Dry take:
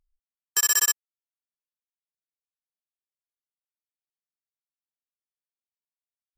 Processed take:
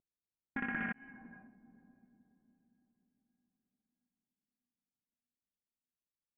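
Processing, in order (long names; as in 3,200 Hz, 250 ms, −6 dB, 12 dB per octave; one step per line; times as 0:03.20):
pitch glide at a constant tempo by +3.5 semitones starting unshifted
first difference
brickwall limiter −17.5 dBFS, peak gain reduction 6.5 dB
voice inversion scrambler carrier 3,400 Hz
feedback delay with all-pass diffusion 516 ms, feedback 46%, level −14 dB
low-pass that shuts in the quiet parts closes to 380 Hz, open at −48.5 dBFS
highs frequency-modulated by the lows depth 0.14 ms
level +12.5 dB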